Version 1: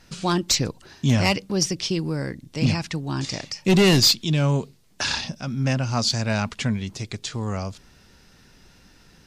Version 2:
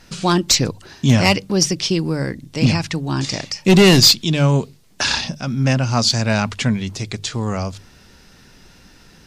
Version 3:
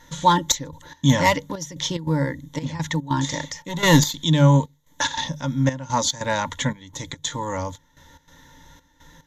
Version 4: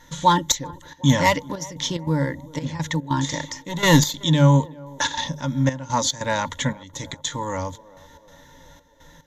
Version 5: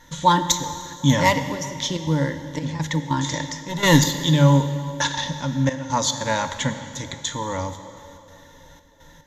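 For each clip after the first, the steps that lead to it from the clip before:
notches 50/100/150 Hz; gain +6 dB
ripple EQ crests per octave 1.1, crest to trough 16 dB; step gate "xxxxx..xx." 145 bpm -12 dB; small resonant body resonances 890/1400 Hz, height 15 dB, ringing for 60 ms; gain -6 dB
narrowing echo 0.378 s, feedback 67%, band-pass 530 Hz, level -19.5 dB
plate-style reverb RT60 2.4 s, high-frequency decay 1×, DRR 8.5 dB

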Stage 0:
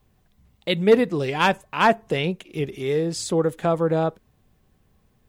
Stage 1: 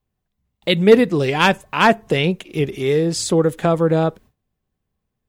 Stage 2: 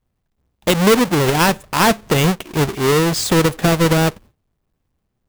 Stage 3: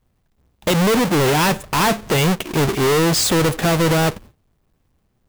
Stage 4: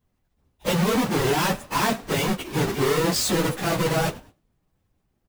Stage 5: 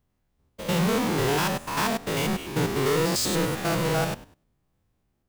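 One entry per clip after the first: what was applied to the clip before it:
gate with hold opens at -46 dBFS; dynamic EQ 830 Hz, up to -4 dB, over -27 dBFS, Q 0.84; gain +6.5 dB
half-waves squared off; compressor 3:1, threshold -12 dBFS, peak gain reduction 7 dB
soft clip -21 dBFS, distortion -9 dB; gain +6.5 dB
phase scrambler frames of 50 ms; frequency-shifting echo 0.105 s, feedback 34%, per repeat +58 Hz, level -23.5 dB; gain -6 dB
stepped spectrum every 0.1 s

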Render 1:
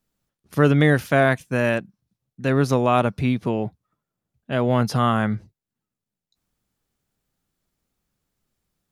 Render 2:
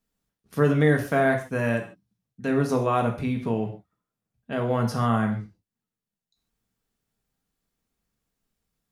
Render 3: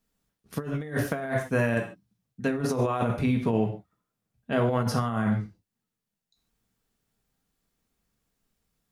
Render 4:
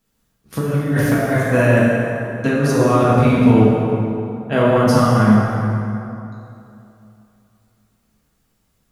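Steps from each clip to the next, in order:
non-linear reverb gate 0.17 s falling, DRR 2 dB; dynamic EQ 3300 Hz, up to -6 dB, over -37 dBFS, Q 0.87; gain -5 dB
negative-ratio compressor -25 dBFS, ratio -0.5
plate-style reverb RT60 2.8 s, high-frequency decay 0.6×, DRR -4.5 dB; gain +6 dB

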